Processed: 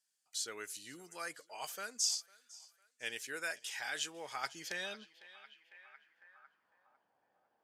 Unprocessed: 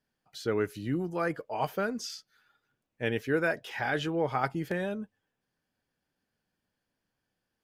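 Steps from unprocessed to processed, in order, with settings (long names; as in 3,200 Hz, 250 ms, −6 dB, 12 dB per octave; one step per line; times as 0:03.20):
feedback echo with a high-pass in the loop 502 ms, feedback 48%, high-pass 590 Hz, level −22 dB
band-pass filter sweep 7,900 Hz → 760 Hz, 0:04.30–0:07.16
level +14 dB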